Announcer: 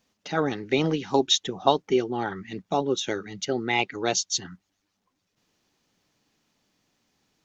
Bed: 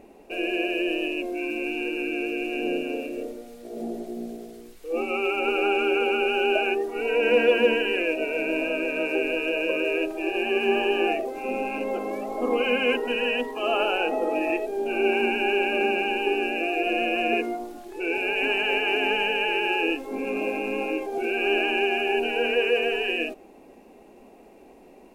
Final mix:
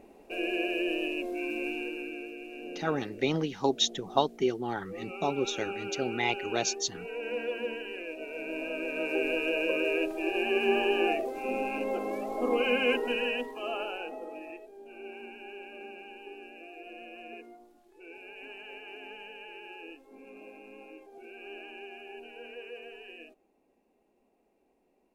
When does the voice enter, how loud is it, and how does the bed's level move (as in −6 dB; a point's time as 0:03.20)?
2.50 s, −5.0 dB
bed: 0:01.67 −4.5 dB
0:02.37 −14.5 dB
0:08.06 −14.5 dB
0:09.28 −3.5 dB
0:13.08 −3.5 dB
0:14.77 −21.5 dB